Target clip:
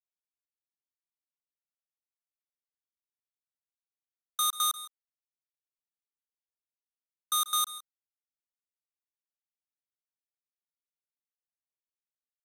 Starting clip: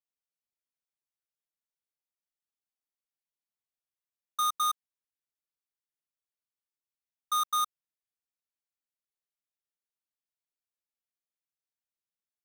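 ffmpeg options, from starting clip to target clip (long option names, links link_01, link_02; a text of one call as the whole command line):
ffmpeg -i in.wav -filter_complex "[0:a]highpass=frequency=270:width=0.5412,highpass=frequency=270:width=1.3066,lowshelf=frequency=370:gain=10.5,acrossover=split=950[link_01][link_02];[link_01]alimiter=level_in=20dB:limit=-24dB:level=0:latency=1,volume=-20dB[link_03];[link_03][link_02]amix=inputs=2:normalize=0,acrusher=bits=3:mix=0:aa=0.5,asplit=2[link_04][link_05];[link_05]aecho=0:1:139|162:0.141|0.112[link_06];[link_04][link_06]amix=inputs=2:normalize=0,aresample=32000,aresample=44100,volume=5dB" out.wav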